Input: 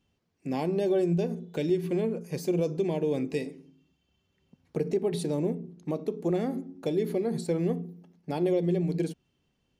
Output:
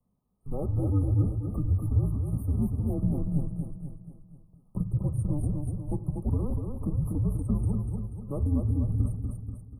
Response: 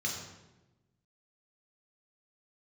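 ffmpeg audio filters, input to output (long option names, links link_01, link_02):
-filter_complex "[0:a]aecho=1:1:242|484|726|968|1210|1452:0.596|0.292|0.143|0.0701|0.0343|0.0168,acrossover=split=290|1100|2400[link_01][link_02][link_03][link_04];[link_04]alimiter=level_in=14dB:limit=-24dB:level=0:latency=1:release=229,volume=-14dB[link_05];[link_01][link_02][link_03][link_05]amix=inputs=4:normalize=0,afreqshift=-280,afftfilt=real='re*(1-between(b*sr/4096,1300,8500))':imag='im*(1-between(b*sr/4096,1300,8500))':win_size=4096:overlap=0.75"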